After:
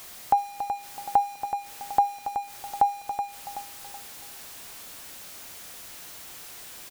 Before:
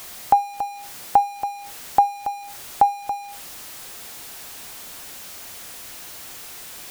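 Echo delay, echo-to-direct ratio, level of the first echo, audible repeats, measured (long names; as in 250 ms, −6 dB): 376 ms, −7.5 dB, −8.5 dB, 3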